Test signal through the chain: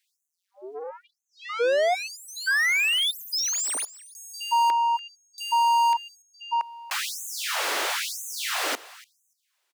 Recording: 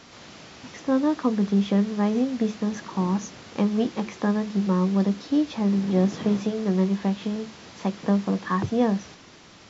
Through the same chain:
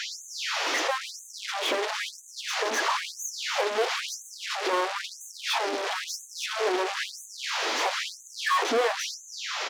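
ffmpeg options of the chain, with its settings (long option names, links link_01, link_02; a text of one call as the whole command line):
ffmpeg -i in.wav -filter_complex "[0:a]bandreject=frequency=67.72:width_type=h:width=4,bandreject=frequency=135.44:width_type=h:width=4,bandreject=frequency=203.16:width_type=h:width=4,asplit=2[link_01][link_02];[link_02]highpass=frequency=720:poles=1,volume=36dB,asoftclip=type=tanh:threshold=-10dB[link_03];[link_01][link_03]amix=inputs=2:normalize=0,lowpass=frequency=3500:poles=1,volume=-6dB,asplit=2[link_04][link_05];[link_05]aecho=0:1:290|580:0.112|0.0168[link_06];[link_04][link_06]amix=inputs=2:normalize=0,afftfilt=real='re*gte(b*sr/1024,250*pow(6200/250,0.5+0.5*sin(2*PI*1*pts/sr)))':imag='im*gte(b*sr/1024,250*pow(6200/250,0.5+0.5*sin(2*PI*1*pts/sr)))':win_size=1024:overlap=0.75,volume=-5.5dB" out.wav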